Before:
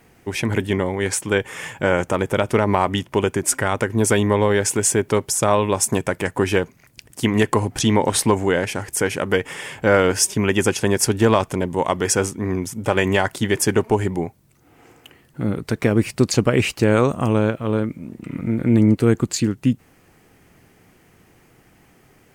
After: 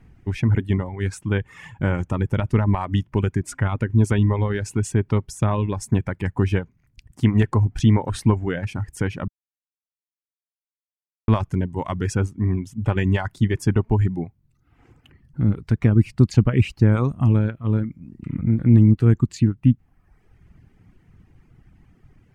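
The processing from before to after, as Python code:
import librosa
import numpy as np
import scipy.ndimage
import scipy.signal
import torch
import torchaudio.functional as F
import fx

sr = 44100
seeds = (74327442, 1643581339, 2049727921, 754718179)

y = fx.edit(x, sr, fx.silence(start_s=9.28, length_s=2.0), tone=tone)
y = fx.riaa(y, sr, side='playback')
y = fx.dereverb_blind(y, sr, rt60_s=1.0)
y = fx.peak_eq(y, sr, hz=520.0, db=-8.0, octaves=1.3)
y = F.gain(torch.from_numpy(y), -4.5).numpy()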